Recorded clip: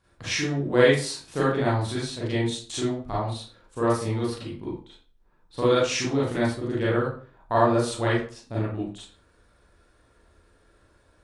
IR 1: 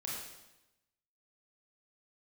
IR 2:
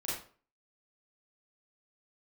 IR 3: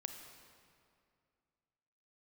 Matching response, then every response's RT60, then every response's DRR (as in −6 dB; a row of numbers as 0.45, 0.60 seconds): 2; 0.95, 0.45, 2.3 seconds; −5.0, −8.0, 5.5 decibels